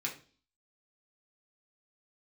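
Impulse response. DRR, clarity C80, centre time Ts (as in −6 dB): −3.0 dB, 16.0 dB, 17 ms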